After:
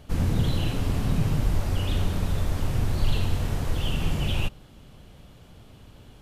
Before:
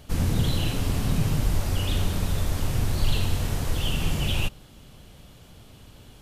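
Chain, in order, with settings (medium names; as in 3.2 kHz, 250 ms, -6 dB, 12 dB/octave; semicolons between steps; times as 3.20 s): treble shelf 3.4 kHz -7.5 dB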